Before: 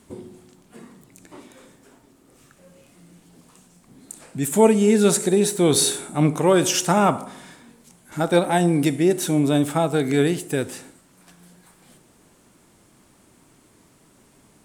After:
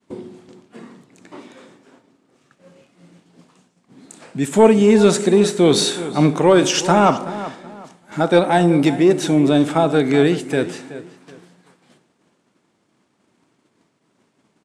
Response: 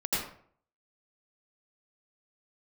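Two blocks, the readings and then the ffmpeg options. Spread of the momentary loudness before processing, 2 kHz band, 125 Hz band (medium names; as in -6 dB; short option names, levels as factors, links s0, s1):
11 LU, +4.5 dB, +2.5 dB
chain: -filter_complex "[0:a]highpass=150,lowpass=5300,acontrast=38,asplit=2[s0][s1];[s1]adelay=376,lowpass=f=2700:p=1,volume=0.2,asplit=2[s2][s3];[s3]adelay=376,lowpass=f=2700:p=1,volume=0.3,asplit=2[s4][s5];[s5]adelay=376,lowpass=f=2700:p=1,volume=0.3[s6];[s2][s4][s6]amix=inputs=3:normalize=0[s7];[s0][s7]amix=inputs=2:normalize=0,agate=range=0.0224:threshold=0.00794:ratio=3:detection=peak"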